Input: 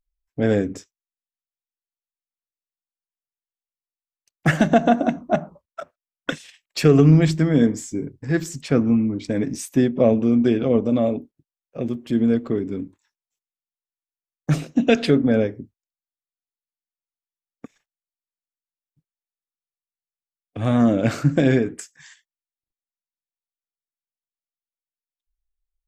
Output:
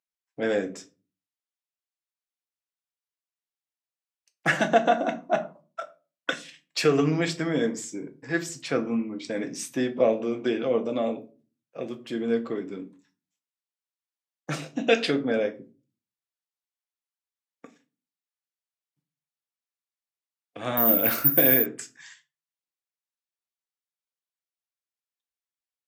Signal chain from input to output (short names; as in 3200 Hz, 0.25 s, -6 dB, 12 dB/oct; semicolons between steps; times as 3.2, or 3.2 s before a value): shoebox room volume 150 m³, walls furnished, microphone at 0.73 m; 20.77–21.66 careless resampling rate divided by 3×, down filtered, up zero stuff; weighting filter A; gain -2 dB